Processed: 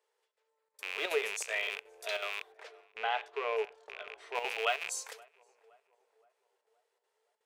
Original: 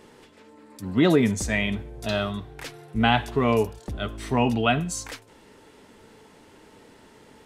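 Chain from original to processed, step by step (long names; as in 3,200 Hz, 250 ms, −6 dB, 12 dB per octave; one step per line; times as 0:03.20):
loose part that buzzes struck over −32 dBFS, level −16 dBFS
noise gate −44 dBFS, range −19 dB
elliptic high-pass filter 430 Hz, stop band 40 dB
high-shelf EQ 4,900 Hz +5 dB
square-wave tremolo 2.7 Hz, depth 60%, duty 85%
0:02.52–0:04.35: head-to-tape spacing loss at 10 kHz 21 dB
on a send: tape delay 520 ms, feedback 56%, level −22.5 dB, low-pass 1,300 Hz
on the sum: level −8.5 dB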